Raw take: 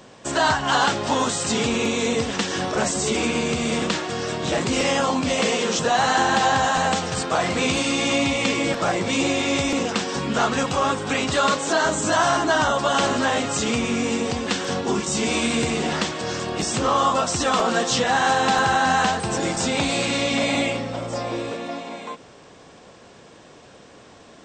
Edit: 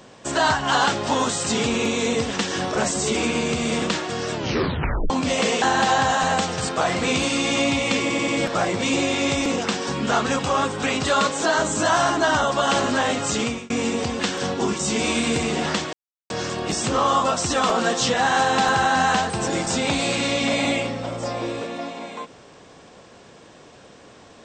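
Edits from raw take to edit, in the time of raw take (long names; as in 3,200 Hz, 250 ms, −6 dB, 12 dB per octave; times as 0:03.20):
0:04.33: tape stop 0.77 s
0:05.62–0:06.16: remove
0:08.55: stutter 0.09 s, 4 plays
0:13.68–0:13.97: fade out
0:16.20: splice in silence 0.37 s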